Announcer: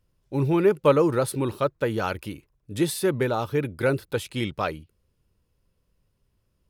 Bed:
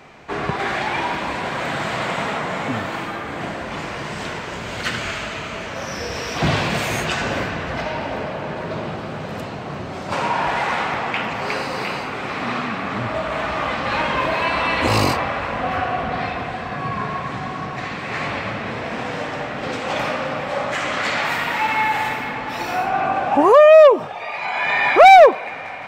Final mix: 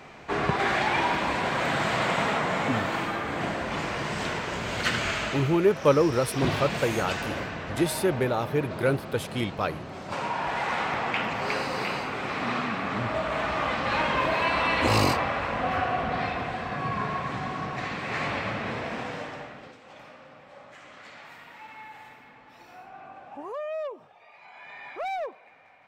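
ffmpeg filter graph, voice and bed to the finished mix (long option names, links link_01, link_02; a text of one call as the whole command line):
ffmpeg -i stem1.wav -i stem2.wav -filter_complex "[0:a]adelay=5000,volume=-1.5dB[link_01];[1:a]volume=2.5dB,afade=type=out:start_time=5.29:duration=0.28:silence=0.446684,afade=type=in:start_time=10.41:duration=0.67:silence=0.595662,afade=type=out:start_time=18.72:duration=1.03:silence=0.0944061[link_02];[link_01][link_02]amix=inputs=2:normalize=0" out.wav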